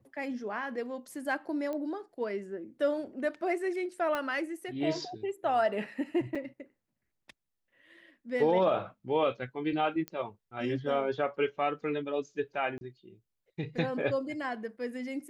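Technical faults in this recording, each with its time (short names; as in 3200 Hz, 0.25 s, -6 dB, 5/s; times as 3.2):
1.73 pop -25 dBFS
4.15 pop -19 dBFS
6.35–6.36 gap 5.1 ms
10.08 pop -23 dBFS
12.78–12.81 gap 31 ms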